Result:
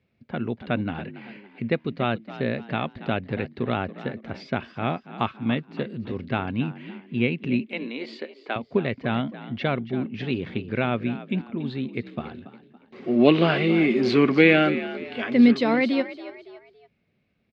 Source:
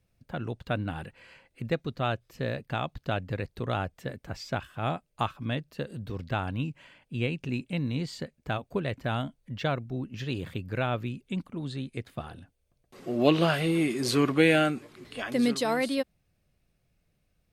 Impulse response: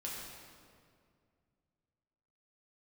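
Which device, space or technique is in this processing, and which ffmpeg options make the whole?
frequency-shifting delay pedal into a guitar cabinet: -filter_complex "[0:a]asettb=1/sr,asplit=3[s0][s1][s2];[s0]atrim=end=7.664[s3];[s1]atrim=start=7.66:end=8.56,asetpts=PTS-STARTPTS,afade=t=in:d=0.004:c=qsin,afade=t=out:st=0.896:d=0.004:c=qsin,highpass=f=340:w=0.5412,highpass=f=340:w=1.3066[s4];[s2]atrim=start=8.556[s5];[s3][s4]acrossfade=d=0.004:c1=hsin:c2=qsin[s6];[s6][s5]acrossfade=d=0.004:c1=qsin:c2=hsin,asplit=4[s7][s8][s9][s10];[s8]adelay=281,afreqshift=52,volume=0.188[s11];[s9]adelay=562,afreqshift=104,volume=0.07[s12];[s10]adelay=843,afreqshift=156,volume=0.0257[s13];[s7][s11][s12][s13]amix=inputs=4:normalize=0,highpass=100,equalizer=f=230:t=q:w=4:g=9,equalizer=f=390:t=q:w=4:g=6,equalizer=f=2200:t=q:w=4:g=7,lowpass=f=4200:w=0.5412,lowpass=f=4200:w=1.3066,volume=1.33"

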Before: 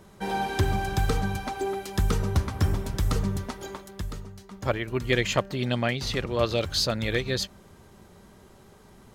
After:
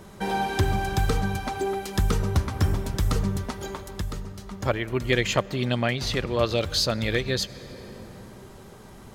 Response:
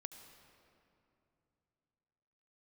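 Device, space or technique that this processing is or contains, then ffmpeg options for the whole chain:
compressed reverb return: -filter_complex "[0:a]asplit=2[s0][s1];[1:a]atrim=start_sample=2205[s2];[s1][s2]afir=irnorm=-1:irlink=0,acompressor=threshold=0.00794:ratio=10,volume=1.88[s3];[s0][s3]amix=inputs=2:normalize=0"

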